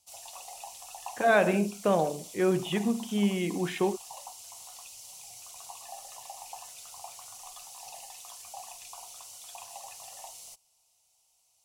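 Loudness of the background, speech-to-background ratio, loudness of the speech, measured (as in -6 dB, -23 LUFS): -43.5 LUFS, 16.0 dB, -27.5 LUFS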